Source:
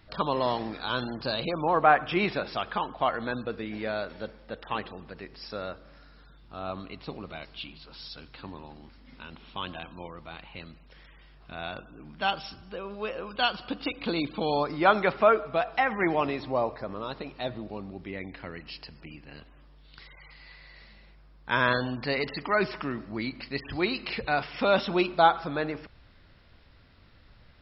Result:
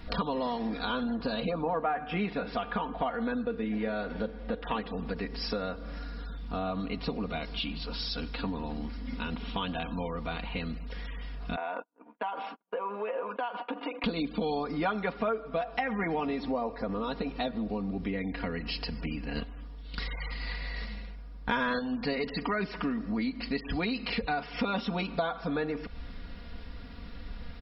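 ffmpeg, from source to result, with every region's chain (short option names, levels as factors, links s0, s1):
-filter_complex "[0:a]asettb=1/sr,asplit=3[s0][s1][s2];[s0]atrim=end=0.854[s3];[s1]atrim=start=0.85:end=4.65,asetpts=PTS-STARTPTS,afade=t=in:d=0.004:c=qsin,afade=t=out:st=3.796:d=0.004:c=qsin,lowpass=3400,bandreject=f=149.3:t=h:w=4,bandreject=f=298.6:t=h:w=4,bandreject=f=447.9:t=h:w=4,bandreject=f=597.2:t=h:w=4,bandreject=f=746.5:t=h:w=4,bandreject=f=895.8:t=h:w=4,bandreject=f=1045.1:t=h:w=4,bandreject=f=1194.4:t=h:w=4,bandreject=f=1343.7:t=h:w=4,bandreject=f=1493:t=h:w=4,bandreject=f=1642.3:t=h:w=4,bandreject=f=1791.6:t=h:w=4,bandreject=f=1940.9:t=h:w=4,bandreject=f=2090.2:t=h:w=4,bandreject=f=2239.5:t=h:w=4,bandreject=f=2388.8:t=h:w=4,bandreject=f=2538.1:t=h:w=4,bandreject=f=2687.4:t=h:w=4,bandreject=f=2836.7:t=h:w=4,bandreject=f=2986:t=h:w=4,bandreject=f=3135.3:t=h:w=4,bandreject=f=3284.6:t=h:w=4,bandreject=f=3433.9:t=h:w=4,bandreject=f=3583.2:t=h:w=4,bandreject=f=3732.5:t=h:w=4,bandreject=f=3881.8:t=h:w=4,bandreject=f=4031.1:t=h:w=4,bandreject=f=4180.4:t=h:w=4,bandreject=f=4329.7:t=h:w=4,bandreject=f=4479:t=h:w=4,bandreject=f=4628.3:t=h:w=4,bandreject=f=4777.6:t=h:w=4[s4];[s2]atrim=start=4.646[s5];[s3][s4]acrossfade=d=0.004:c1=hsin:c2=qsin[s6];[s6][s5]acrossfade=d=0.004:c1=qsin:c2=hsin,asettb=1/sr,asplit=3[s7][s8][s9];[s7]atrim=end=11.564[s10];[s8]atrim=start=11.56:end=14.04,asetpts=PTS-STARTPTS,afade=t=in:d=0.004:c=qsin,afade=t=out:st=2.476:d=0.004:c=qsin,agate=range=0.00398:threshold=0.00631:ratio=16:release=100:detection=peak,acompressor=threshold=0.0112:ratio=6:attack=3.2:release=140:knee=1:detection=peak,highpass=f=310:w=0.5412,highpass=f=310:w=1.3066,equalizer=f=380:t=q:w=4:g=-4,equalizer=f=590:t=q:w=4:g=4,equalizer=f=940:t=q:w=4:g=10,lowpass=f=2500:w=0.5412,lowpass=f=2500:w=1.3066[s11];[s9]atrim=start=14.036[s12];[s10][s11]acrossfade=d=0.004:c1=hsin:c2=qsin[s13];[s13][s12]acrossfade=d=0.004:c1=qsin:c2=hsin,asettb=1/sr,asplit=3[s14][s15][s16];[s14]atrim=end=19.354[s17];[s15]atrim=start=19.35:end=21.79,asetpts=PTS-STARTPTS,afade=t=in:d=0.004:c=qsin,afade=t=out:st=2.436:d=0.004:c=qsin,agate=range=0.0224:threshold=0.00398:ratio=3:release=100:detection=peak,acontrast=46[s18];[s16]atrim=start=21.786[s19];[s17][s18]acrossfade=d=0.004:c1=hsin:c2=qsin[s20];[s20][s19]acrossfade=d=0.004:c1=qsin:c2=hsin,lowshelf=f=440:g=7,aecho=1:1:4.2:0.89,acompressor=threshold=0.0158:ratio=5,volume=2"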